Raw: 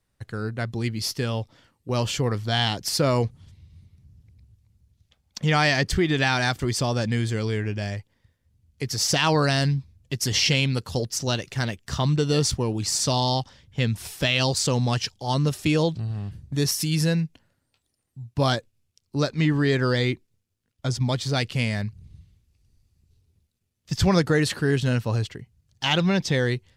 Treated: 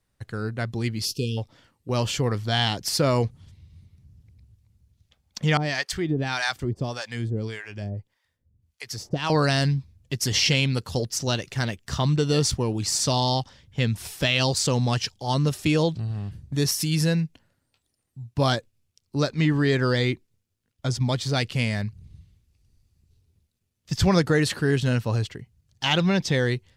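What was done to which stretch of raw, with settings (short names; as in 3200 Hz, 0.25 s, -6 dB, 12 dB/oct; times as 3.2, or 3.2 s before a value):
1.05–1.38 spectral delete 500–2400 Hz
5.57–9.3 harmonic tremolo 1.7 Hz, depth 100%, crossover 650 Hz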